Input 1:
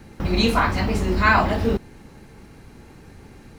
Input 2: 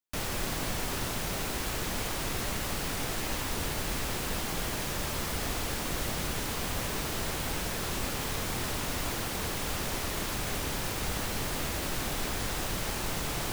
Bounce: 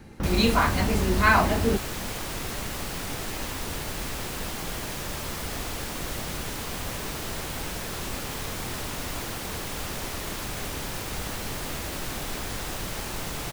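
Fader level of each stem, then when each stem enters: −2.5, 0.0 decibels; 0.00, 0.10 seconds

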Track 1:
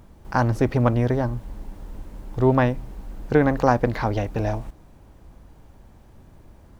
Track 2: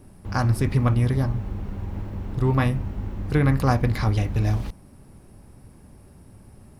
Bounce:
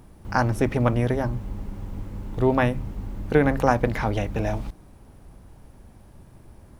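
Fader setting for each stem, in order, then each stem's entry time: −1.0, −6.0 decibels; 0.00, 0.00 seconds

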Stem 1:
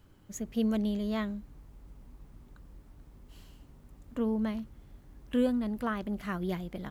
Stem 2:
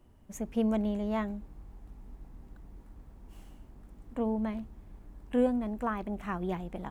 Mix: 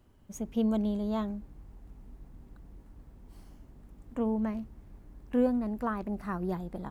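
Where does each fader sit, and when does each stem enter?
−7.5, −3.0 decibels; 0.00, 0.00 seconds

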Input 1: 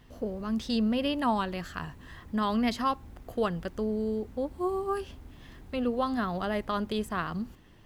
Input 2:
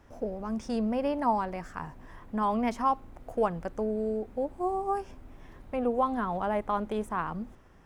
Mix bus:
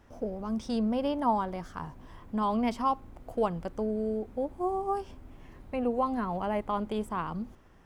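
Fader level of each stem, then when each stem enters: −13.0, −1.5 decibels; 0.00, 0.00 seconds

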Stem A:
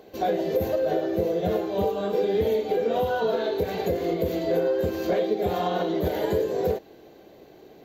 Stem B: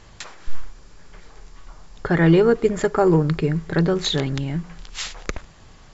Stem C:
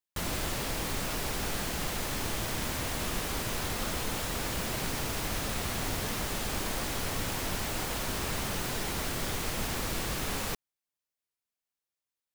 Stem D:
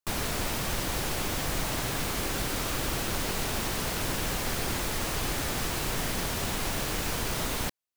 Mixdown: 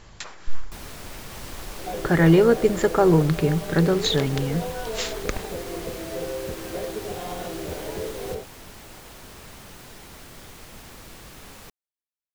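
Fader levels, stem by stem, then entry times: −8.0, −0.5, −10.5, −9.0 decibels; 1.65, 0.00, 1.15, 0.65 seconds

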